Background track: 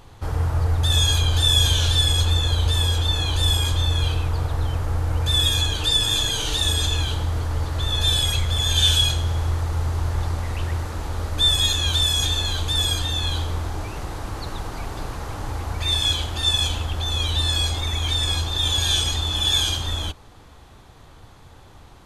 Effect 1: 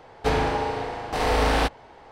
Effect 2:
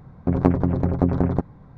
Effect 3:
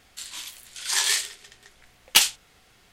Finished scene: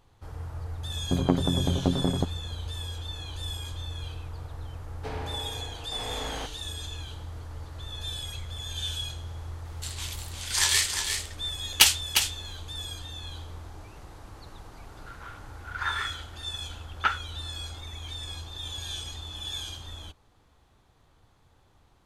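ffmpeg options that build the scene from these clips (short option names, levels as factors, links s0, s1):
-filter_complex "[3:a]asplit=2[s0][s1];[0:a]volume=0.168[s2];[s0]aecho=1:1:354:0.473[s3];[s1]lowpass=f=1400:t=q:w=11[s4];[2:a]atrim=end=1.77,asetpts=PTS-STARTPTS,volume=0.531,afade=t=in:d=0.004:c=hsin,afade=t=out:st=1.766:d=0.004:c=hsin,adelay=840[s5];[1:a]atrim=end=2.11,asetpts=PTS-STARTPTS,volume=0.188,afade=t=in:d=0.004:c=hsin,afade=t=out:st=2.106:d=0.004:c=hsin,adelay=4790[s6];[s3]atrim=end=2.92,asetpts=PTS-STARTPTS,volume=0.944,afade=t=in:d=0.004:c=hsin,afade=t=out:st=2.916:d=0.004:c=hsin,adelay=9650[s7];[s4]atrim=end=2.92,asetpts=PTS-STARTPTS,volume=0.447,afade=t=in:d=0.004:c=hsin,afade=t=out:st=2.916:d=0.004:c=hsin,adelay=14890[s8];[s2][s5][s6][s7][s8]amix=inputs=5:normalize=0"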